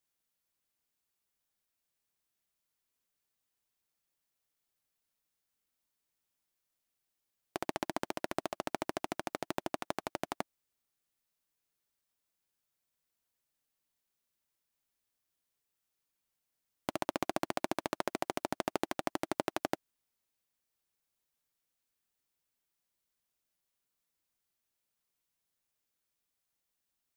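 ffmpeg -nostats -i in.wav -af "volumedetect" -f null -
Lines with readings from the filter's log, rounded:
mean_volume: -44.5 dB
max_volume: -12.3 dB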